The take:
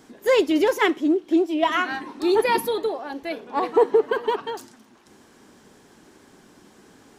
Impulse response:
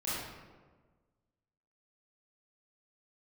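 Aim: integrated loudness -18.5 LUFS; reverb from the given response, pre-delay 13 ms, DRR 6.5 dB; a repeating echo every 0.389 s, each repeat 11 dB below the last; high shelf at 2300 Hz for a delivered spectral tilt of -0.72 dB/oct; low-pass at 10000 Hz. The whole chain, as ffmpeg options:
-filter_complex "[0:a]lowpass=10k,highshelf=f=2.3k:g=6,aecho=1:1:389|778|1167:0.282|0.0789|0.0221,asplit=2[a][b];[1:a]atrim=start_sample=2205,adelay=13[c];[b][c]afir=irnorm=-1:irlink=0,volume=-12dB[d];[a][d]amix=inputs=2:normalize=0,volume=1.5dB"

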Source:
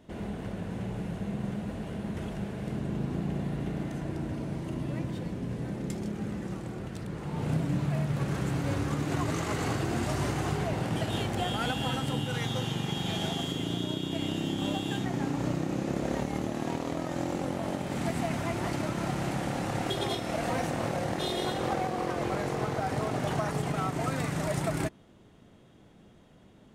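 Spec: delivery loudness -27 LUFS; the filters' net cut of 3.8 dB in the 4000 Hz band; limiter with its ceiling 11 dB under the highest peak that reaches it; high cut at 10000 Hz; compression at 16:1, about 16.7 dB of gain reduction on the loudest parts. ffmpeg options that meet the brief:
-af "lowpass=10k,equalizer=f=4k:t=o:g=-5,acompressor=threshold=-42dB:ratio=16,volume=25.5dB,alimiter=limit=-18.5dB:level=0:latency=1"

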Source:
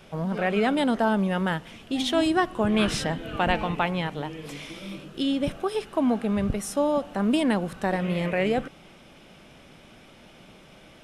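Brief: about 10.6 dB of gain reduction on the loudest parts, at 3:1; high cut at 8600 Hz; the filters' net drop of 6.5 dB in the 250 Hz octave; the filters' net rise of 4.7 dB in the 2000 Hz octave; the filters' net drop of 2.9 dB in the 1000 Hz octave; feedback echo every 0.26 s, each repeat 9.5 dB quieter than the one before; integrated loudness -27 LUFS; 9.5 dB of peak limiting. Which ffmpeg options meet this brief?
-af "lowpass=8.6k,equalizer=f=250:t=o:g=-8.5,equalizer=f=1k:t=o:g=-5,equalizer=f=2k:t=o:g=7.5,acompressor=threshold=-33dB:ratio=3,alimiter=level_in=3dB:limit=-24dB:level=0:latency=1,volume=-3dB,aecho=1:1:260|520|780|1040:0.335|0.111|0.0365|0.012,volume=9.5dB"

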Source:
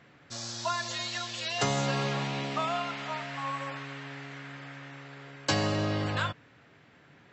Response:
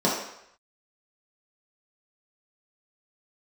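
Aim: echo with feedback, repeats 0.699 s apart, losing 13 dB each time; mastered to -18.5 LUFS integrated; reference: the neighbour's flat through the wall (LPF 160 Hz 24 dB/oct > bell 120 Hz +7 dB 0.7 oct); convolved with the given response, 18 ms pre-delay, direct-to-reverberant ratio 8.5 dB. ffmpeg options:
-filter_complex "[0:a]aecho=1:1:699|1398|2097:0.224|0.0493|0.0108,asplit=2[a][b];[1:a]atrim=start_sample=2205,adelay=18[c];[b][c]afir=irnorm=-1:irlink=0,volume=-24dB[d];[a][d]amix=inputs=2:normalize=0,lowpass=f=160:w=0.5412,lowpass=f=160:w=1.3066,equalizer=f=120:t=o:w=0.7:g=7,volume=19dB"

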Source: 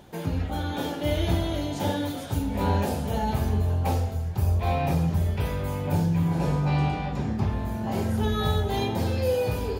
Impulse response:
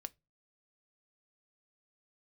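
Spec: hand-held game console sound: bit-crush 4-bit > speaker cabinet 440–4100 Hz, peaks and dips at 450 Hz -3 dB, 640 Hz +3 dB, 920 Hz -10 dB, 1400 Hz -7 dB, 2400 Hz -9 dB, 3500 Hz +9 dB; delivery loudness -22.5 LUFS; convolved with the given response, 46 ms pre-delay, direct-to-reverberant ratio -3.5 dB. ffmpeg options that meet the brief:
-filter_complex "[0:a]asplit=2[a][b];[1:a]atrim=start_sample=2205,adelay=46[c];[b][c]afir=irnorm=-1:irlink=0,volume=7.5dB[d];[a][d]amix=inputs=2:normalize=0,acrusher=bits=3:mix=0:aa=0.000001,highpass=440,equalizer=f=450:t=q:w=4:g=-3,equalizer=f=640:t=q:w=4:g=3,equalizer=f=920:t=q:w=4:g=-10,equalizer=f=1.4k:t=q:w=4:g=-7,equalizer=f=2.4k:t=q:w=4:g=-9,equalizer=f=3.5k:t=q:w=4:g=9,lowpass=f=4.1k:w=0.5412,lowpass=f=4.1k:w=1.3066,volume=3.5dB"

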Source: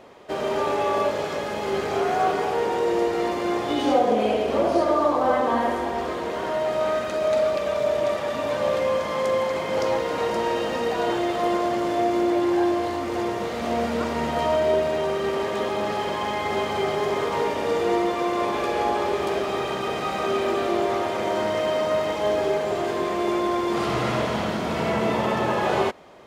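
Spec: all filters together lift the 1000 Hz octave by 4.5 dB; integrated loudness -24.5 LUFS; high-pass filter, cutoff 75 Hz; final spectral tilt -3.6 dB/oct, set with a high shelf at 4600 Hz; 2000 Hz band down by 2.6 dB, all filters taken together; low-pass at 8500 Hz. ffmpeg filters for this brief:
-af "highpass=75,lowpass=8.5k,equalizer=f=1k:t=o:g=7,equalizer=f=2k:t=o:g=-7,highshelf=f=4.6k:g=7.5,volume=-2.5dB"

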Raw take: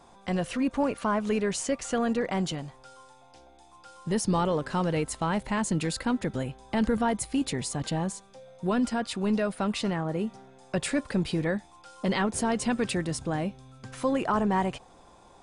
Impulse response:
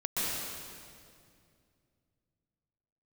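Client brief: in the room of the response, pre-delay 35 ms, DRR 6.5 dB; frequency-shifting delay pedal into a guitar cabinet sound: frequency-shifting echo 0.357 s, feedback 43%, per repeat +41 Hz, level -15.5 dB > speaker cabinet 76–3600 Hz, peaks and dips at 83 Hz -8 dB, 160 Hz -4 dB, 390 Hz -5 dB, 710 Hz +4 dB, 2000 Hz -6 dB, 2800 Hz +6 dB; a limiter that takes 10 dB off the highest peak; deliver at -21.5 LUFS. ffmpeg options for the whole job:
-filter_complex "[0:a]alimiter=level_in=1dB:limit=-24dB:level=0:latency=1,volume=-1dB,asplit=2[a][b];[1:a]atrim=start_sample=2205,adelay=35[c];[b][c]afir=irnorm=-1:irlink=0,volume=-14.5dB[d];[a][d]amix=inputs=2:normalize=0,asplit=5[e][f][g][h][i];[f]adelay=357,afreqshift=41,volume=-15.5dB[j];[g]adelay=714,afreqshift=82,volume=-22.8dB[k];[h]adelay=1071,afreqshift=123,volume=-30.2dB[l];[i]adelay=1428,afreqshift=164,volume=-37.5dB[m];[e][j][k][l][m]amix=inputs=5:normalize=0,highpass=76,equalizer=f=83:t=q:w=4:g=-8,equalizer=f=160:t=q:w=4:g=-4,equalizer=f=390:t=q:w=4:g=-5,equalizer=f=710:t=q:w=4:g=4,equalizer=f=2k:t=q:w=4:g=-6,equalizer=f=2.8k:t=q:w=4:g=6,lowpass=f=3.6k:w=0.5412,lowpass=f=3.6k:w=1.3066,volume=13dB"

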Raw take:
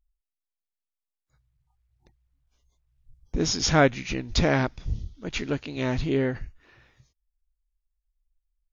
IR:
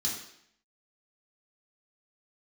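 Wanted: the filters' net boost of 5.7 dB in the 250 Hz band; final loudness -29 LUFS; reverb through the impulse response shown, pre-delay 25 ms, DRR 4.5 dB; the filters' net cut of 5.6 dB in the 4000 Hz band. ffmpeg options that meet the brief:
-filter_complex "[0:a]equalizer=f=250:t=o:g=7,equalizer=f=4k:t=o:g=-8,asplit=2[a][b];[1:a]atrim=start_sample=2205,adelay=25[c];[b][c]afir=irnorm=-1:irlink=0,volume=-8dB[d];[a][d]amix=inputs=2:normalize=0,volume=-7.5dB"

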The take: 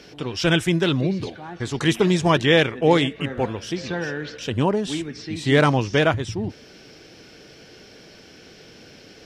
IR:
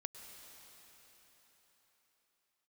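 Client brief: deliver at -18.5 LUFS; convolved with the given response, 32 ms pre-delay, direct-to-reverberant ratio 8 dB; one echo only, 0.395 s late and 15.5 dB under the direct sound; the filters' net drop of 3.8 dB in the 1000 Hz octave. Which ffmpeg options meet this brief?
-filter_complex "[0:a]equalizer=f=1k:t=o:g=-5,aecho=1:1:395:0.168,asplit=2[a][b];[1:a]atrim=start_sample=2205,adelay=32[c];[b][c]afir=irnorm=-1:irlink=0,volume=-5dB[d];[a][d]amix=inputs=2:normalize=0,volume=3dB"

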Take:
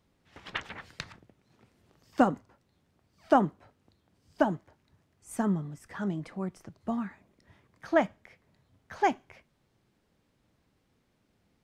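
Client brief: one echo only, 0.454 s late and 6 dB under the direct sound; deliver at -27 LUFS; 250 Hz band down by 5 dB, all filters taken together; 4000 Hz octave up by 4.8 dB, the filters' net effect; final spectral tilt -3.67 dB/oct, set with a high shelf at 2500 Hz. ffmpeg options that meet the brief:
-af "equalizer=f=250:t=o:g=-6.5,highshelf=f=2.5k:g=3.5,equalizer=f=4k:t=o:g=3.5,aecho=1:1:454:0.501,volume=6dB"

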